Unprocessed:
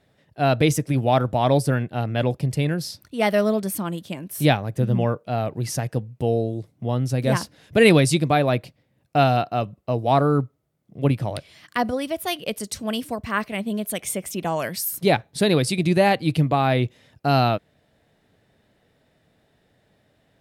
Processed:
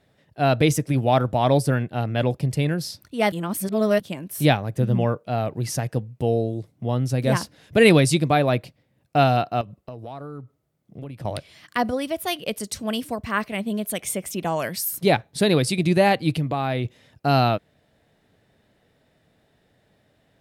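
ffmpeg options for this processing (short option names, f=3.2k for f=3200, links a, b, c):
-filter_complex "[0:a]asettb=1/sr,asplit=3[a][b][c];[a]atrim=end=9.614[d];[b]atrim=start=9.61:end=11.25,asetpts=PTS-STARTPTS,afade=t=in:d=0.004:c=qsin,afade=t=out:st=1.636:d=0.004:c=qsin,acompressor=threshold=-32dB:ratio=12:attack=3.2:release=140:knee=1:detection=peak[e];[c]atrim=start=11.246[f];[d][e]acrossfade=d=0.004:c1=hsin:c2=qsin[g];[g][f]acrossfade=d=0.004:c1=qsin:c2=hsin,asettb=1/sr,asplit=3[h][i][j];[h]atrim=end=16.314[k];[i]atrim=start=16.31:end=16.85,asetpts=PTS-STARTPTS,afade=t=in:d=0.004:c=qsin,afade=t=out:st=0.536:d=0.004:c=qsin,acompressor=threshold=-24dB:ratio=2:attack=3.2:release=140:knee=1:detection=peak[l];[j]atrim=start=16.846[m];[k][l]acrossfade=d=0.004:c1=hsin:c2=qsin[n];[n][m]acrossfade=d=0.004:c1=qsin:c2=hsin,asplit=3[o][p][q];[o]atrim=end=3.322[r];[p]atrim=start=3.318:end=4.002,asetpts=PTS-STARTPTS,areverse[s];[q]atrim=start=3.998[t];[r][s]acrossfade=d=0.004:c1=hsin:c2=hsin[u];[u][t]acrossfade=d=0.004:c1=hsin:c2=hsin"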